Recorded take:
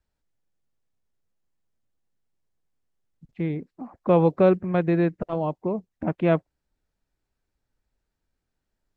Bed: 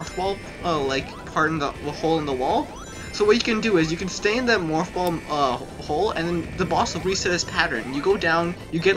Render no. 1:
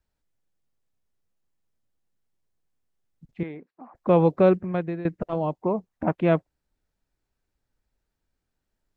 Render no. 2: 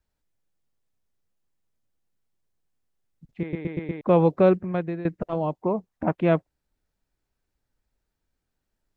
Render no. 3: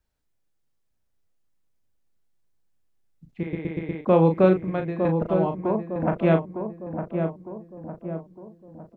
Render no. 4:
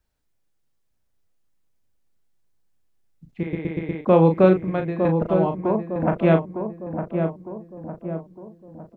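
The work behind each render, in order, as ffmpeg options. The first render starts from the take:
-filter_complex "[0:a]asettb=1/sr,asplit=3[a][b][c];[a]atrim=end=3.434[d];[b]atrim=start=3.43:end=3.95,asetpts=PTS-STARTPTS,afade=t=in:d=0.004:c=qsin,afade=t=out:st=0.516:d=0.004:c=qsin,bandpass=f=1.2k:t=q:w=0.68[e];[c]atrim=start=3.946[f];[d][e]acrossfade=d=0.004:c1=hsin:c2=qsin[g];[g][f]acrossfade=d=0.004:c1=qsin:c2=hsin,asettb=1/sr,asplit=3[h][i][j];[h]atrim=end=5.624[k];[i]atrim=start=5.62:end=6.14,asetpts=PTS-STARTPTS,afade=t=in:d=0.004:c=qsin,afade=t=out:st=0.516:d=0.004:c=qsin,equalizer=f=970:w=0.92:g=7[l];[j]atrim=start=6.136[m];[k][l]acrossfade=d=0.004:c1=hsin:c2=qsin[n];[n][m]acrossfade=d=0.004:c1=qsin:c2=hsin,asplit=2[o][p];[o]atrim=end=5.05,asetpts=PTS-STARTPTS,afade=t=out:st=4.56:d=0.49:silence=0.149624[q];[p]atrim=start=5.05,asetpts=PTS-STARTPTS,afade=t=in:d=0.004:c=hsin:silence=0.149624[r];[q][r]concat=n=2:v=0:a=1"
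-filter_complex "[0:a]asplit=6[a][b][c][d][e][f];[a]atrim=end=3.532[g];[b]atrim=start=3.408:end=3.532[h];[c]atrim=start=3.408:end=3.532[i];[d]atrim=start=3.408:end=3.532[j];[e]atrim=start=3.408:end=3.532[k];[f]atrim=start=4.008[l];[g][h]acrossfade=d=0.004:c1=hsin:c2=hsin[m];[m][i]acrossfade=d=0.004:c1=hsin:c2=hsin[n];[n][j]acrossfade=d=0.004:c1=hsin:c2=hsin[o];[o][k]acrossfade=d=0.004:c1=hsin:c2=hsin[p];[p][l]acrossfade=d=0.004:c1=hsin:c2=hsin"
-filter_complex "[0:a]asplit=2[a][b];[b]adelay=37,volume=-7dB[c];[a][c]amix=inputs=2:normalize=0,asplit=2[d][e];[e]adelay=907,lowpass=f=1.2k:p=1,volume=-6dB,asplit=2[f][g];[g]adelay=907,lowpass=f=1.2k:p=1,volume=0.51,asplit=2[h][i];[i]adelay=907,lowpass=f=1.2k:p=1,volume=0.51,asplit=2[j][k];[k]adelay=907,lowpass=f=1.2k:p=1,volume=0.51,asplit=2[l][m];[m]adelay=907,lowpass=f=1.2k:p=1,volume=0.51,asplit=2[n][o];[o]adelay=907,lowpass=f=1.2k:p=1,volume=0.51[p];[f][h][j][l][n][p]amix=inputs=6:normalize=0[q];[d][q]amix=inputs=2:normalize=0"
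-af "volume=2.5dB"

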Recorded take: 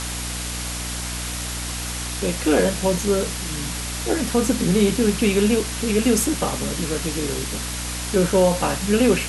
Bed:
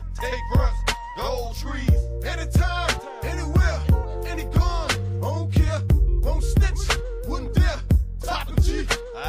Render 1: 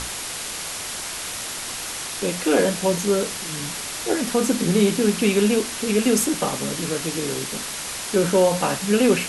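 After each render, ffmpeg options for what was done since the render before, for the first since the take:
-af "bandreject=f=60:t=h:w=6,bandreject=f=120:t=h:w=6,bandreject=f=180:t=h:w=6,bandreject=f=240:t=h:w=6,bandreject=f=300:t=h:w=6"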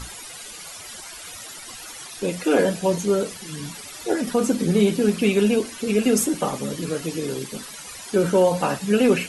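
-af "afftdn=nr=14:nf=-31"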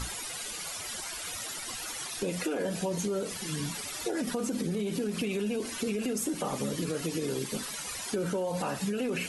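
-af "alimiter=limit=-18.5dB:level=0:latency=1:release=74,acompressor=threshold=-28dB:ratio=6"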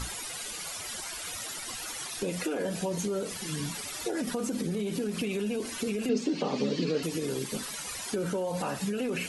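-filter_complex "[0:a]asettb=1/sr,asplit=3[a][b][c];[a]atrim=end=6.094[d];[b]atrim=start=6.09:end=7.03,asetpts=PTS-STARTPTS,afade=t=in:d=0.004:c=qsin,afade=t=out:st=0.936:d=0.004:c=qsin,highpass=150,equalizer=f=160:t=q:w=4:g=4,equalizer=f=250:t=q:w=4:g=8,equalizer=f=430:t=q:w=4:g=7,equalizer=f=1.3k:t=q:w=4:g=-4,equalizer=f=2.6k:t=q:w=4:g=5,equalizer=f=4.4k:t=q:w=4:g=8,lowpass=f=5.7k:w=0.5412,lowpass=f=5.7k:w=1.3066[e];[c]atrim=start=7.026[f];[d][e]acrossfade=d=0.004:c1=hsin:c2=qsin[g];[g][f]acrossfade=d=0.004:c1=qsin:c2=hsin"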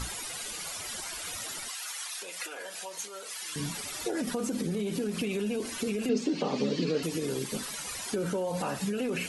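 -filter_complex "[0:a]asettb=1/sr,asplit=3[a][b][c];[a]atrim=end=1.684[d];[b]atrim=start=1.68:end=3.56,asetpts=PTS-STARTPTS,afade=t=in:d=0.004:c=qsin,afade=t=out:st=1.876:d=0.004:c=qsin,highpass=1k[e];[c]atrim=start=3.556[f];[d][e]acrossfade=d=0.004:c1=hsin:c2=qsin[g];[g][f]acrossfade=d=0.004:c1=qsin:c2=hsin"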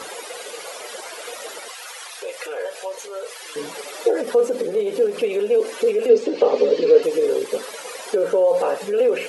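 -filter_complex "[0:a]asplit=2[a][b];[b]adynamicsmooth=sensitivity=1:basefreq=4.3k,volume=0dB[c];[a][c]amix=inputs=2:normalize=0,highpass=f=480:t=q:w=4.9"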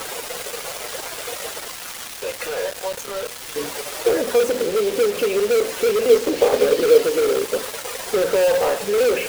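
-filter_complex "[0:a]asplit=2[a][b];[b]aeval=exprs='(mod(5.96*val(0)+1,2)-1)/5.96':c=same,volume=-9dB[c];[a][c]amix=inputs=2:normalize=0,acrusher=bits=4:mix=0:aa=0.000001"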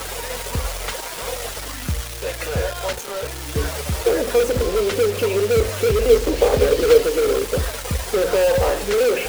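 -filter_complex "[1:a]volume=-6.5dB[a];[0:a][a]amix=inputs=2:normalize=0"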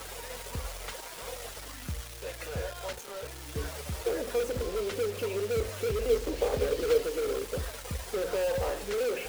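-af "volume=-12.5dB"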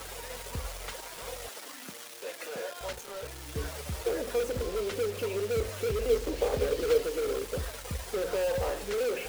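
-filter_complex "[0:a]asettb=1/sr,asplit=3[a][b][c];[a]atrim=end=1.484[d];[b]atrim=start=1.48:end=2.81,asetpts=PTS-STARTPTS,afade=t=in:d=0.004:c=qsin,afade=t=out:st=1.326:d=0.004:c=qsin,highpass=f=220:w=0.5412,highpass=f=220:w=1.3066[e];[c]atrim=start=2.806[f];[d][e]acrossfade=d=0.004:c1=hsin:c2=qsin[g];[g][f]acrossfade=d=0.004:c1=qsin:c2=hsin"

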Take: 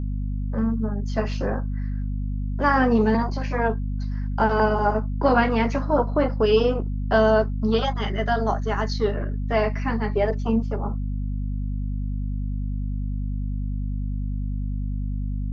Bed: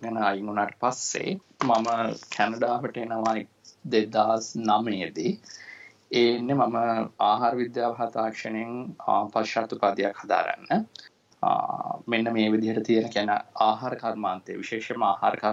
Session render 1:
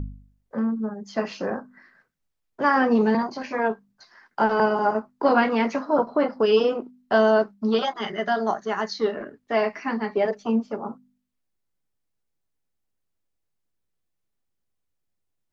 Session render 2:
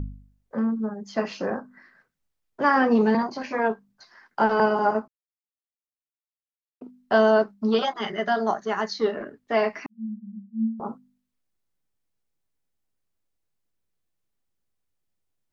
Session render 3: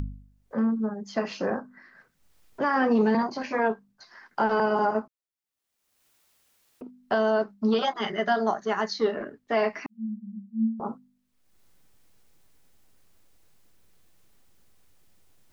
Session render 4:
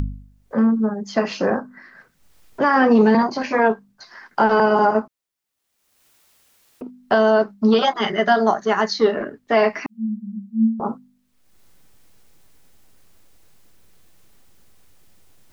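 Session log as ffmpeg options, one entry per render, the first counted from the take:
-af "bandreject=f=50:t=h:w=4,bandreject=f=100:t=h:w=4,bandreject=f=150:t=h:w=4,bandreject=f=200:t=h:w=4,bandreject=f=250:t=h:w=4"
-filter_complex "[0:a]asettb=1/sr,asplit=3[a][b][c];[a]atrim=end=9.864[d];[b]atrim=start=9.86:end=10.8,asetpts=PTS-STARTPTS,afade=t=in:d=0.004:c=qsin,afade=t=out:st=0.936:d=0.004:c=qsin,asuperpass=centerf=210:order=20:qfactor=6.8[e];[c]atrim=start=10.796[f];[d][e]acrossfade=d=0.004:c1=hsin:c2=qsin[g];[g][f]acrossfade=d=0.004:c1=qsin:c2=hsin,asplit=3[h][i][j];[h]atrim=end=5.08,asetpts=PTS-STARTPTS,afade=t=out:st=5.076:d=0.004:c=hsin[k];[i]atrim=start=5.08:end=6.81,asetpts=PTS-STARTPTS,volume=0[l];[j]atrim=start=6.81,asetpts=PTS-STARTPTS,afade=t=in:d=0.004:c=hsin[m];[k][l][m]concat=n=3:v=0:a=1"
-af "acompressor=mode=upward:threshold=-42dB:ratio=2.5,alimiter=limit=-14dB:level=0:latency=1:release=133"
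-af "volume=8dB"

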